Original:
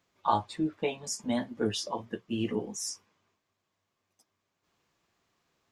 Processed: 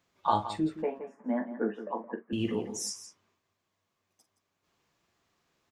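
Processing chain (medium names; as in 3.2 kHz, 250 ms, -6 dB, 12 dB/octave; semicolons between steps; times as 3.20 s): 0.82–2.33 s: elliptic band-pass 220–1800 Hz, stop band 40 dB; multi-tap echo 44/169 ms -12.5/-12.5 dB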